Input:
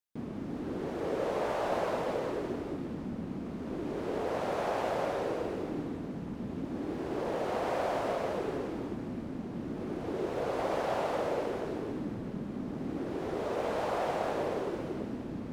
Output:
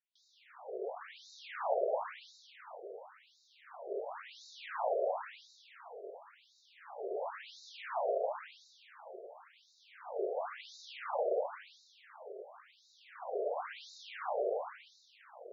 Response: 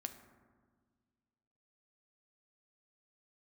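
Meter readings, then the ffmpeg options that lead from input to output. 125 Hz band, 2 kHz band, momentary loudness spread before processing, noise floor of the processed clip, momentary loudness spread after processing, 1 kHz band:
below −40 dB, −6.5 dB, 7 LU, −68 dBFS, 21 LU, −5.5 dB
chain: -af "afftfilt=real='re*between(b*sr/1024,500*pow(5200/500,0.5+0.5*sin(2*PI*0.95*pts/sr))/1.41,500*pow(5200/500,0.5+0.5*sin(2*PI*0.95*pts/sr))*1.41)':imag='im*between(b*sr/1024,500*pow(5200/500,0.5+0.5*sin(2*PI*0.95*pts/sr))/1.41,500*pow(5200/500,0.5+0.5*sin(2*PI*0.95*pts/sr))*1.41)':win_size=1024:overlap=0.75,volume=1dB"

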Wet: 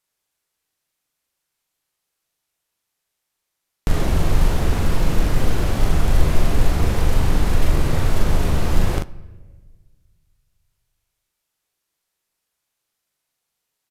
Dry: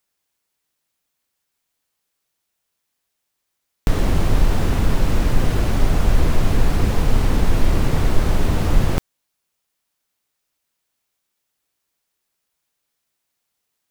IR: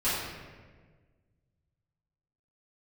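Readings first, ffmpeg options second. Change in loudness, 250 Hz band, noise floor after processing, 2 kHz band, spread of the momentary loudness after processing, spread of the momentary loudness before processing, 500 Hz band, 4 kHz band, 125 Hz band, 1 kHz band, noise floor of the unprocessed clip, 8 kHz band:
−0.5 dB, −2.0 dB, −79 dBFS, −0.5 dB, 3 LU, 1 LU, −0.5 dB, 0.0 dB, −0.5 dB, −0.5 dB, −77 dBFS, +1.0 dB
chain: -filter_complex "[0:a]equalizer=frequency=240:width=6.5:gain=-5,acrusher=bits=7:mode=log:mix=0:aa=0.000001,aecho=1:1:41|54:0.668|0.15,asplit=2[link_01][link_02];[1:a]atrim=start_sample=2205[link_03];[link_02][link_03]afir=irnorm=-1:irlink=0,volume=-28dB[link_04];[link_01][link_04]amix=inputs=2:normalize=0,aresample=32000,aresample=44100,volume=-2.5dB"

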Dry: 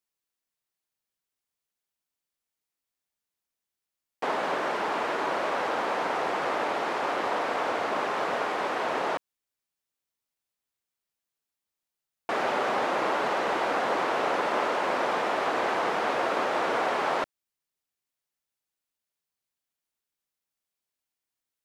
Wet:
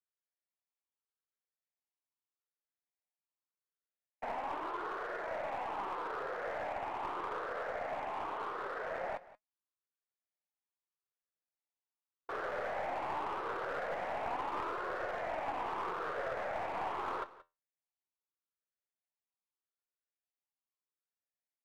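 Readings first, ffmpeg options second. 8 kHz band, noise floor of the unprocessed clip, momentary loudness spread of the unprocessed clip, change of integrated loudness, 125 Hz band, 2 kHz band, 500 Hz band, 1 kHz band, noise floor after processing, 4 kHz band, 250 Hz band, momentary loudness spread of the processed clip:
below −15 dB, below −85 dBFS, 3 LU, −11.0 dB, −8.0 dB, −12.0 dB, −11.0 dB, −10.5 dB, below −85 dBFS, −17.0 dB, −14.5 dB, 2 LU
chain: -filter_complex "[0:a]afftfilt=real='re*pow(10,10/40*sin(2*PI*(0.6*log(max(b,1)*sr/1024/100)/log(2)-(0.81)*(pts-256)/sr)))':imag='im*pow(10,10/40*sin(2*PI*(0.6*log(max(b,1)*sr/1024/100)/log(2)-(0.81)*(pts-256)/sr)))':win_size=1024:overlap=0.75,acrossover=split=340 2200:gain=0.224 1 0.1[link_01][link_02][link_03];[link_01][link_02][link_03]amix=inputs=3:normalize=0,aeval=exprs='clip(val(0),-1,0.0501)':channel_layout=same,flanger=delay=2.7:depth=9.1:regen=71:speed=0.2:shape=sinusoidal,aecho=1:1:178:0.126,volume=-6dB"

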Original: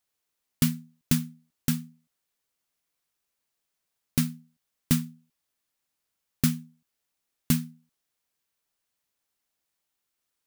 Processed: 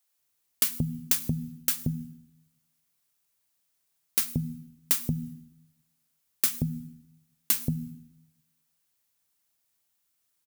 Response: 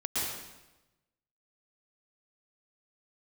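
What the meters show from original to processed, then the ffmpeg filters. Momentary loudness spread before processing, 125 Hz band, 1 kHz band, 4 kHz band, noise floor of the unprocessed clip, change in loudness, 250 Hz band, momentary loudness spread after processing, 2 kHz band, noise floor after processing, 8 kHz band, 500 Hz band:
13 LU, −2.0 dB, −0.5 dB, +1.5 dB, −82 dBFS, +0.5 dB, −5.0 dB, 15 LU, 0.0 dB, −75 dBFS, +4.5 dB, +0.5 dB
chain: -filter_complex "[0:a]lowshelf=frequency=200:gain=6.5,bandreject=frequency=60:width_type=h:width=6,bandreject=frequency=120:width_type=h:width=6,bandreject=frequency=180:width_type=h:width=6,bandreject=frequency=240:width_type=h:width=6,acrossover=split=410[link_01][link_02];[link_01]adelay=180[link_03];[link_03][link_02]amix=inputs=2:normalize=0,asplit=2[link_04][link_05];[1:a]atrim=start_sample=2205,asetrate=52920,aresample=44100,highshelf=frequency=9900:gain=8.5[link_06];[link_05][link_06]afir=irnorm=-1:irlink=0,volume=-26.5dB[link_07];[link_04][link_07]amix=inputs=2:normalize=0,acompressor=threshold=-24dB:ratio=6,highpass=55,highshelf=frequency=6100:gain=8"

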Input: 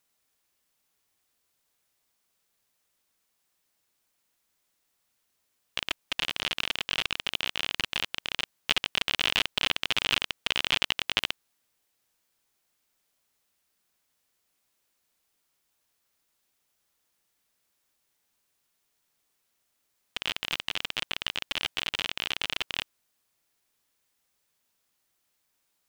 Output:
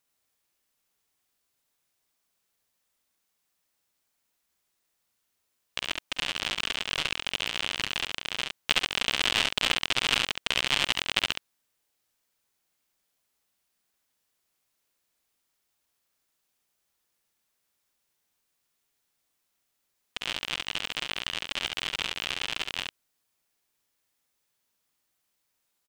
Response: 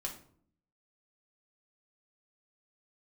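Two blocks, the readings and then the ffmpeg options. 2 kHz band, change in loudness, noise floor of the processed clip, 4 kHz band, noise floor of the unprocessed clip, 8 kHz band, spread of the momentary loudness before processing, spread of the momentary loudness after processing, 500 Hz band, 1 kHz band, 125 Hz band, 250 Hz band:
+1.0 dB, +1.0 dB, −78 dBFS, +0.5 dB, −76 dBFS, +4.0 dB, 7 LU, 9 LU, +2.0 dB, +2.0 dB, +2.0 dB, +2.0 dB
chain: -af "aeval=exprs='0.841*(cos(1*acos(clip(val(0)/0.841,-1,1)))-cos(1*PI/2))+0.0473*(cos(7*acos(clip(val(0)/0.841,-1,1)))-cos(7*PI/2))':channel_layout=same,aecho=1:1:47|69:0.168|0.631,volume=1dB"

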